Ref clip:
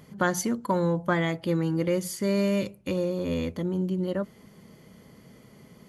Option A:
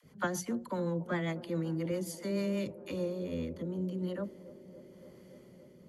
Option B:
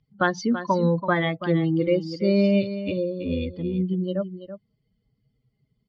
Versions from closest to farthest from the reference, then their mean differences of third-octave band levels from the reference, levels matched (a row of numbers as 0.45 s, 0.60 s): A, B; 3.5 dB, 10.0 dB